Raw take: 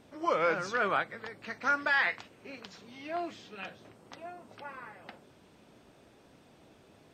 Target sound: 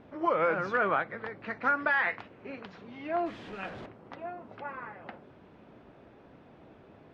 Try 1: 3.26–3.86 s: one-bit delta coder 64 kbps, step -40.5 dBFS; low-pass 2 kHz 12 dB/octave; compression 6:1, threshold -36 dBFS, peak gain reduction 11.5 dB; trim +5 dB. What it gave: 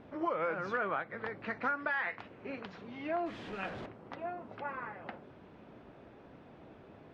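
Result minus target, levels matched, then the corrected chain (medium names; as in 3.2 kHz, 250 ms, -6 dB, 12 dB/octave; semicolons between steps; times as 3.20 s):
compression: peak gain reduction +7 dB
3.26–3.86 s: one-bit delta coder 64 kbps, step -40.5 dBFS; low-pass 2 kHz 12 dB/octave; compression 6:1, threshold -27.5 dBFS, peak gain reduction 4.5 dB; trim +5 dB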